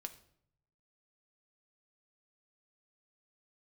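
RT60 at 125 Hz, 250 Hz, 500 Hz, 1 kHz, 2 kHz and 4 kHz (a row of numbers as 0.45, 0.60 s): 1.2, 0.85, 0.75, 0.60, 0.55, 0.50 s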